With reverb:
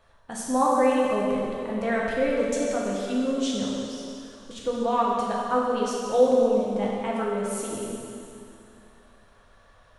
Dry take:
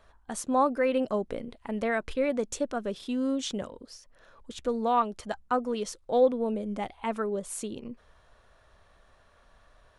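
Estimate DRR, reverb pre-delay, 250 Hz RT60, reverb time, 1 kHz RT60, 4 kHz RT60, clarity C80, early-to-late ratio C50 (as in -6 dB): -4.5 dB, 3 ms, 2.6 s, 2.6 s, 2.6 s, 2.5 s, 0.5 dB, -1.0 dB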